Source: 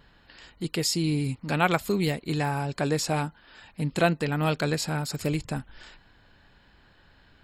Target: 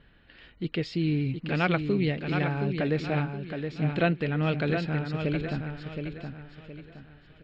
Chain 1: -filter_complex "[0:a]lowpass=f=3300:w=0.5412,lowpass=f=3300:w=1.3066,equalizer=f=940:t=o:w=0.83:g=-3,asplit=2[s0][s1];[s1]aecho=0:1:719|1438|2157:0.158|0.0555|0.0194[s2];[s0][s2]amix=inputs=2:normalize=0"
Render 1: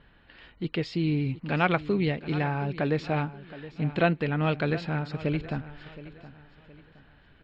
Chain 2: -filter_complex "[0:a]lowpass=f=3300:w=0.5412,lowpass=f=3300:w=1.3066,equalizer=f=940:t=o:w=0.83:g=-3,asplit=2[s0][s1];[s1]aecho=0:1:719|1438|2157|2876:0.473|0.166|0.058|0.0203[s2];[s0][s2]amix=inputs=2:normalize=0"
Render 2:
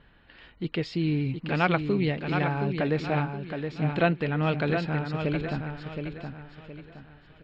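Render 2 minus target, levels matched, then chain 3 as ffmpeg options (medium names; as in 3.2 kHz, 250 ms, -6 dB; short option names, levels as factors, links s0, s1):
1 kHz band +3.0 dB
-filter_complex "[0:a]lowpass=f=3300:w=0.5412,lowpass=f=3300:w=1.3066,equalizer=f=940:t=o:w=0.83:g=-9.5,asplit=2[s0][s1];[s1]aecho=0:1:719|1438|2157|2876:0.473|0.166|0.058|0.0203[s2];[s0][s2]amix=inputs=2:normalize=0"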